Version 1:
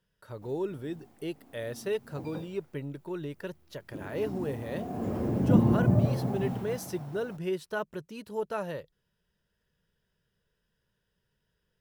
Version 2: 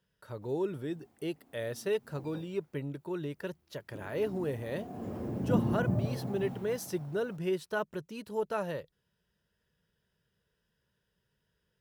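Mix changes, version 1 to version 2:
background -7.0 dB; master: add HPF 46 Hz

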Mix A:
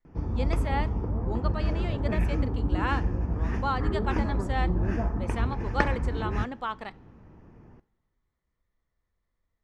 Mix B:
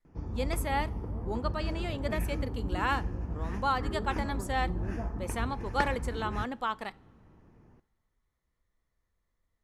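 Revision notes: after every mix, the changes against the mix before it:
background -7.0 dB; master: remove air absorption 75 m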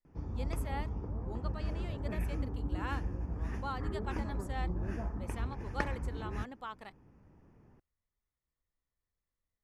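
speech -9.5 dB; reverb: off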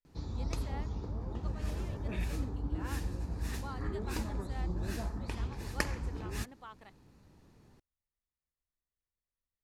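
speech -6.5 dB; background: remove running mean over 11 samples

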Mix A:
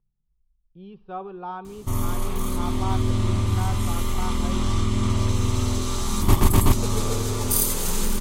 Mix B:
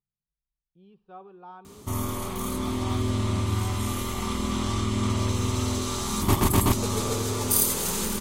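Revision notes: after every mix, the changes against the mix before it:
speech -11.0 dB; master: add HPF 120 Hz 6 dB/oct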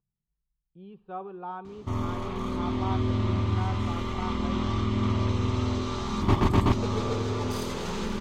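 speech +8.5 dB; master: add air absorption 200 m

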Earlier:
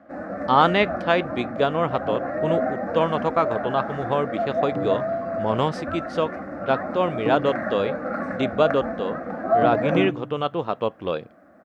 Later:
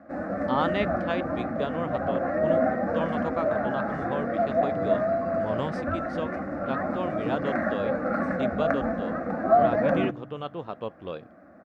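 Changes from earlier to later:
speech -10.5 dB; second sound -9.0 dB; master: add low shelf 230 Hz +4.5 dB

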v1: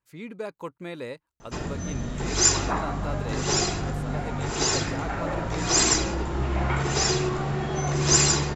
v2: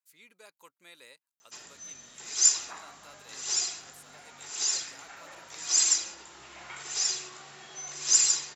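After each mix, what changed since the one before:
master: add differentiator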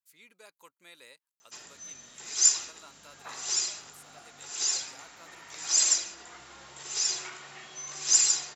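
second sound: entry +0.55 s

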